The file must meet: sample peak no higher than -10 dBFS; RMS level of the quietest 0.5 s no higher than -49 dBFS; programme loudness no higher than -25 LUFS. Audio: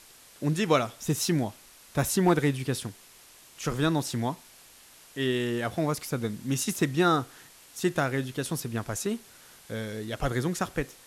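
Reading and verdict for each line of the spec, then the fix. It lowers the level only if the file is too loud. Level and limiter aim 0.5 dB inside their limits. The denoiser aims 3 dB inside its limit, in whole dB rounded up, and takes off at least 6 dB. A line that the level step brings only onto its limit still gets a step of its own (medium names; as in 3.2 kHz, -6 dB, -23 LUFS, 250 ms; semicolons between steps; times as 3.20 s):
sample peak -11.5 dBFS: pass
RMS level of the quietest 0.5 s -54 dBFS: pass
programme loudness -29.0 LUFS: pass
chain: none needed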